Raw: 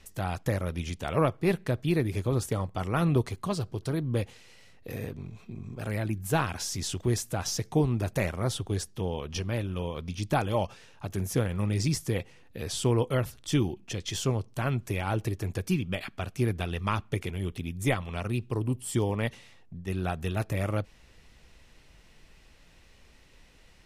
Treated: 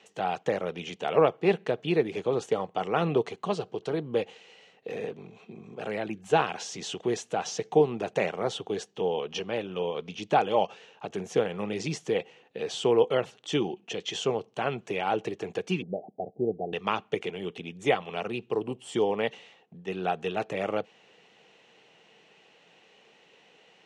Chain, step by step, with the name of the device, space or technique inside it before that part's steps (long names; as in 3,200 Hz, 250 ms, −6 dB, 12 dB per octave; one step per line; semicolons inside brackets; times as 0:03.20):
television speaker (loudspeaker in its box 180–6,600 Hz, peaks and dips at 260 Hz −6 dB, 450 Hz +9 dB, 770 Hz +8 dB, 2,900 Hz +7 dB, 5,000 Hz −7 dB)
0:15.82–0:16.73: Butterworth low-pass 770 Hz 72 dB per octave